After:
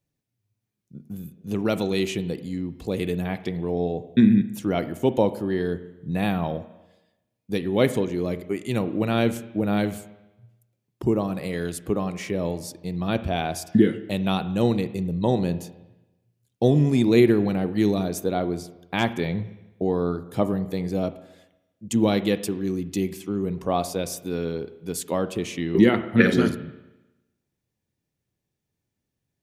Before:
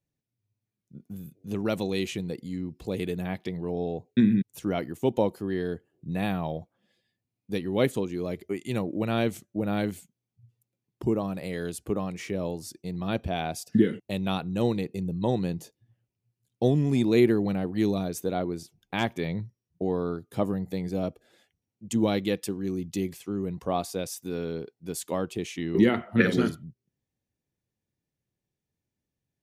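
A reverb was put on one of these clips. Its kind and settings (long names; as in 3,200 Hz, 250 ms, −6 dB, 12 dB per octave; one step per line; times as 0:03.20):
spring reverb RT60 1 s, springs 34/47 ms, chirp 75 ms, DRR 12.5 dB
level +4 dB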